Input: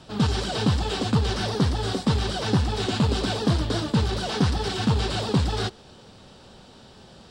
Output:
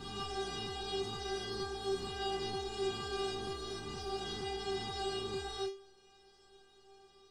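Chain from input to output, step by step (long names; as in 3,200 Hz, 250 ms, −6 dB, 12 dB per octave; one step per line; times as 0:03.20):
peak hold with a rise ahead of every peak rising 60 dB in 2.13 s
stiff-string resonator 390 Hz, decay 0.38 s, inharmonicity 0.002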